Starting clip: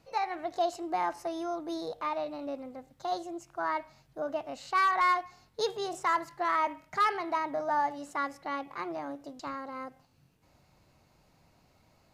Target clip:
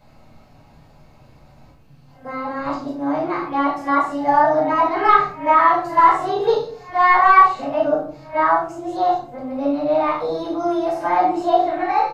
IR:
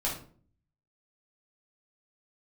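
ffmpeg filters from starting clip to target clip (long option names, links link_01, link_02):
-filter_complex "[0:a]areverse,asplit=2[link_01][link_02];[link_02]adynamicsmooth=sensitivity=5.5:basefreq=4700,volume=-1dB[link_03];[link_01][link_03]amix=inputs=2:normalize=0,asplit=2[link_04][link_05];[link_05]adelay=35,volume=-6.5dB[link_06];[link_04][link_06]amix=inputs=2:normalize=0[link_07];[1:a]atrim=start_sample=2205[link_08];[link_07][link_08]afir=irnorm=-1:irlink=0,acrossover=split=2800[link_09][link_10];[link_10]acompressor=threshold=-46dB:ratio=4:attack=1:release=60[link_11];[link_09][link_11]amix=inputs=2:normalize=0,volume=1.5dB"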